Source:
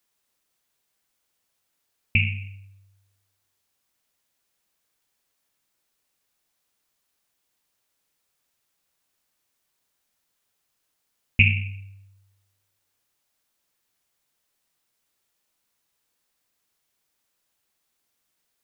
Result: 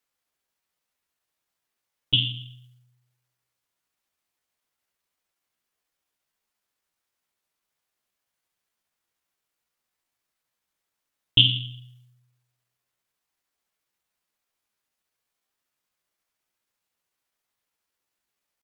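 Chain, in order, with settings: tilt shelf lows -3.5 dB, about 650 Hz; pitch shift +4 st; mismatched tape noise reduction decoder only; gain -1.5 dB

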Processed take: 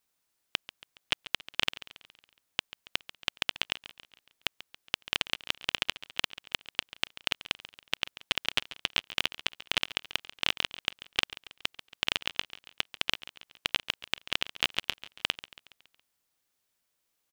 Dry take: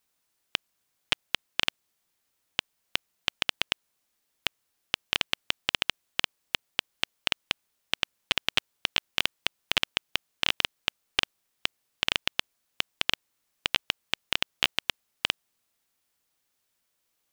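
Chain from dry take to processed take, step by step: on a send: feedback echo 0.139 s, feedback 51%, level -16 dB; on the sum: gain -2.5 dB

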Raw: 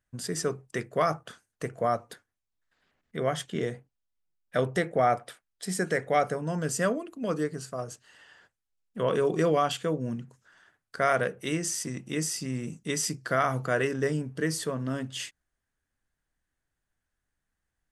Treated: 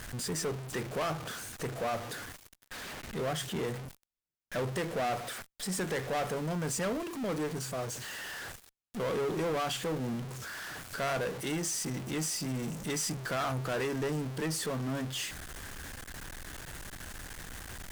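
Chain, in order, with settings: zero-crossing step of -33 dBFS; tube stage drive 26 dB, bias 0.25; gain -2.5 dB

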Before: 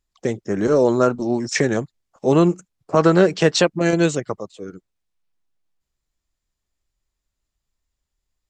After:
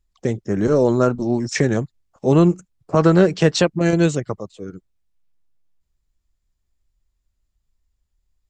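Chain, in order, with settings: low shelf 160 Hz +12 dB; gain -2 dB

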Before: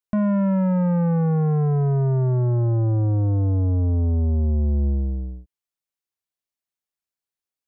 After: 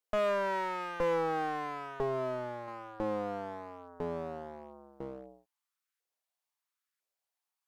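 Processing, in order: LFO high-pass saw up 1 Hz 460–1600 Hz; 2–2.68 graphic EQ 125/250/500/1000 Hz +3/-7/+3/-6 dB; one-sided clip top -41 dBFS, bottom -21 dBFS

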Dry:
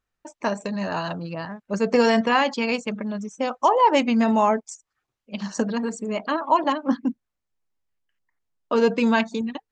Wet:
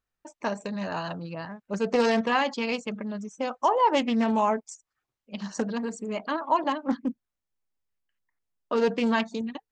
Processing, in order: Doppler distortion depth 0.17 ms; gain -4.5 dB

